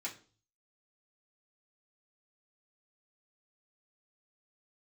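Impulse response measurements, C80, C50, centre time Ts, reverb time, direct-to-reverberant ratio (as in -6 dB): 17.5 dB, 12.5 dB, 15 ms, 0.40 s, -6.0 dB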